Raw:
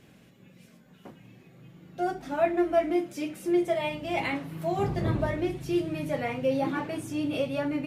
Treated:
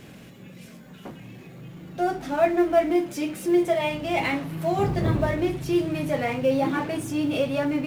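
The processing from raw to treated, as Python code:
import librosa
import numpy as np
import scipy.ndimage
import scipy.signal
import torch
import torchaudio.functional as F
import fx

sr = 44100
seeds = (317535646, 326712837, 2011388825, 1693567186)

y = fx.law_mismatch(x, sr, coded='mu')
y = y * librosa.db_to_amplitude(3.5)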